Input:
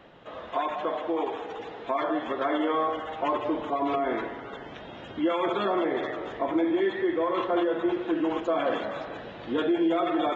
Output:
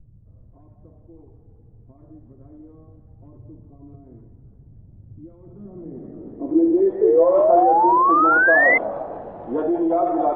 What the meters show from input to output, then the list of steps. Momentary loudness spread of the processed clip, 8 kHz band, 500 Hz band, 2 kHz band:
16 LU, n/a, +7.0 dB, +15.5 dB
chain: added noise pink -50 dBFS; low-pass sweep 110 Hz -> 760 Hz, 5.46–7.32; painted sound rise, 7.01–8.78, 420–2100 Hz -17 dBFS; gain +1.5 dB

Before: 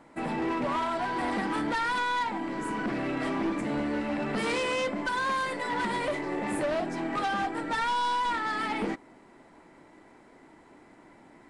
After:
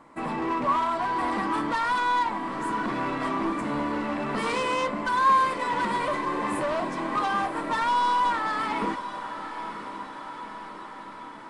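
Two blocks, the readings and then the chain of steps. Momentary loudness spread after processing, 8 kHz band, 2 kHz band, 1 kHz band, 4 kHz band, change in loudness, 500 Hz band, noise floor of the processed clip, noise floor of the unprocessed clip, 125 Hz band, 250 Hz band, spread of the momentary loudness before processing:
15 LU, +0.5 dB, +1.5 dB, +6.0 dB, +0.5 dB, +3.5 dB, +1.0 dB, -41 dBFS, -56 dBFS, +0.5 dB, +0.5 dB, 4 LU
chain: bell 1100 Hz +13 dB 0.26 oct; on a send: diffused feedback echo 0.977 s, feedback 65%, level -11 dB

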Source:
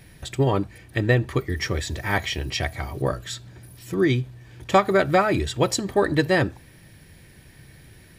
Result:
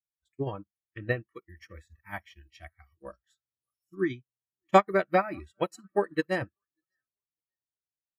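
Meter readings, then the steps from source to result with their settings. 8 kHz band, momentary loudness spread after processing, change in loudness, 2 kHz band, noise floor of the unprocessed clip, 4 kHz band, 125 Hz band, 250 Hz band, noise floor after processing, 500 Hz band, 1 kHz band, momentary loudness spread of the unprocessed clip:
under -20 dB, 21 LU, -5.5 dB, -9.0 dB, -50 dBFS, -16.5 dB, -15.0 dB, -9.5 dB, under -85 dBFS, -7.0 dB, -4.5 dB, 11 LU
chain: on a send: feedback echo 0.596 s, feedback 45%, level -19.5 dB; on the sum: dynamic EQ 4800 Hz, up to -7 dB, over -46 dBFS, Q 1.7; spectral noise reduction 24 dB; upward expander 2.5:1, over -39 dBFS

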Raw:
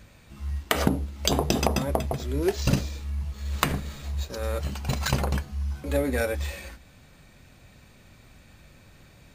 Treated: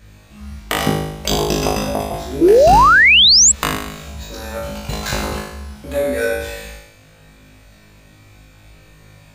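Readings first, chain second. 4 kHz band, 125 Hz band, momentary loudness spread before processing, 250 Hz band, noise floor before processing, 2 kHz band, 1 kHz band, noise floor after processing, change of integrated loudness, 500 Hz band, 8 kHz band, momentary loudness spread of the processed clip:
+19.0 dB, +1.5 dB, 10 LU, +7.5 dB, -54 dBFS, +18.5 dB, +16.5 dB, -47 dBFS, +15.0 dB, +12.5 dB, +19.0 dB, 22 LU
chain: flutter echo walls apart 3.3 m, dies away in 0.88 s; painted sound rise, 2.41–3.52, 310–8000 Hz -10 dBFS; gain +1 dB

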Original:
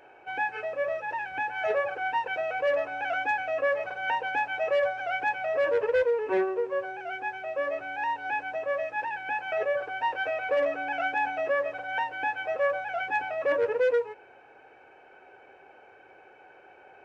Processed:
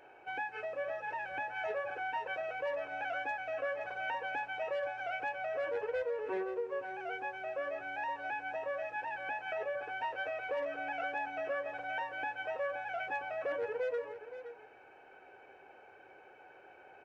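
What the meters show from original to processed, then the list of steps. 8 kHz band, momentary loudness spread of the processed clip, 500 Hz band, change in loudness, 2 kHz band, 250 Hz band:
n/a, 20 LU, -9.5 dB, -9.0 dB, -8.0 dB, -9.0 dB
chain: compressor 2.5:1, threshold -33 dBFS, peak gain reduction 8 dB; echo 0.521 s -11.5 dB; gain -4 dB

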